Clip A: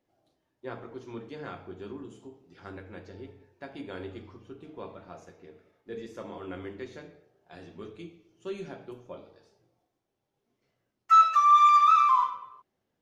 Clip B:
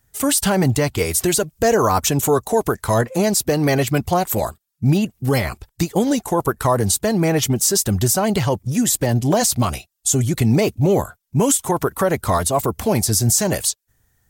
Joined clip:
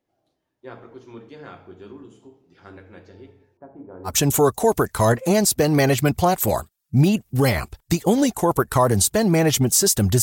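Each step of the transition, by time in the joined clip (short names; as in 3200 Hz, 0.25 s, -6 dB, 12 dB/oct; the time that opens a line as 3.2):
clip A
3.57–4.16 LPF 1100 Hz 24 dB/oct
4.1 switch to clip B from 1.99 s, crossfade 0.12 s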